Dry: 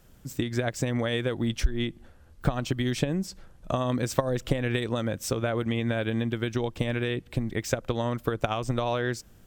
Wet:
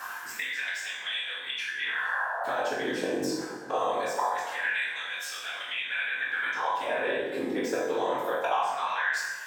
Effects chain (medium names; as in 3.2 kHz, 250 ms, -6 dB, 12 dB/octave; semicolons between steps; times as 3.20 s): spectral replace 1.85–2.54 s, 550–1800 Hz both; reverse; compression, threshold -39 dBFS, peak gain reduction 20.5 dB; reverse; small resonant body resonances 950/1600 Hz, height 11 dB, ringing for 20 ms; whisper effect; LFO high-pass sine 0.23 Hz 330–3300 Hz; on a send: flutter echo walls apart 3.8 m, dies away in 0.22 s; on the sum: plate-style reverb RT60 1 s, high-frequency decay 0.7×, DRR -5 dB; three bands compressed up and down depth 70%; trim +3 dB